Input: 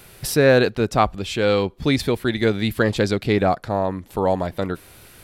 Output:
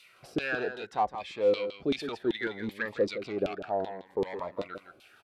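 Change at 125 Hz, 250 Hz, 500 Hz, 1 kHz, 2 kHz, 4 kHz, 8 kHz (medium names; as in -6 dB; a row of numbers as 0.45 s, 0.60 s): -22.5 dB, -13.5 dB, -10.5 dB, -10.0 dB, -10.0 dB, -13.0 dB, under -20 dB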